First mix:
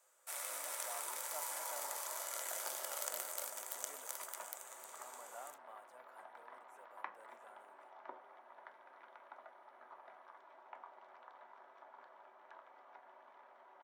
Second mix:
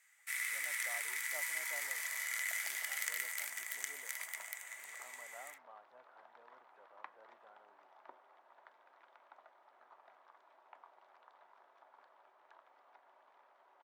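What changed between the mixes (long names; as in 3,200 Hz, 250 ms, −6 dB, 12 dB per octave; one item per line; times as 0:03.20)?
speech: add high-frequency loss of the air 390 metres
first sound: add high-pass with resonance 2,000 Hz, resonance Q 9.6
second sound: send −11.0 dB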